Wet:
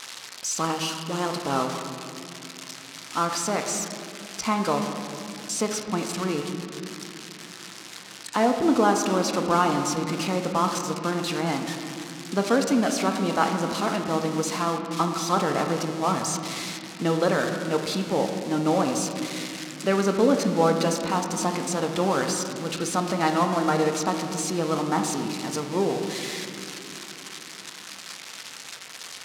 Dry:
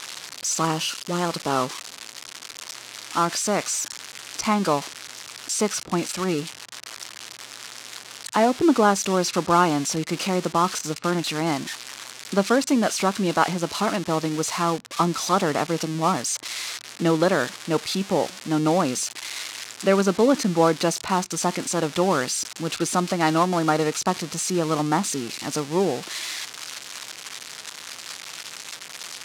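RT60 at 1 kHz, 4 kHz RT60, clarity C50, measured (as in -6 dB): 2.5 s, 1.6 s, 6.0 dB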